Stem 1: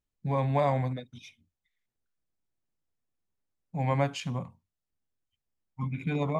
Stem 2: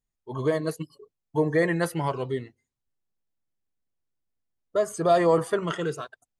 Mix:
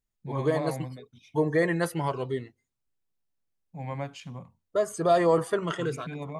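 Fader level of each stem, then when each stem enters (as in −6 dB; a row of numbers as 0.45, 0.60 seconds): −7.5, −1.5 decibels; 0.00, 0.00 seconds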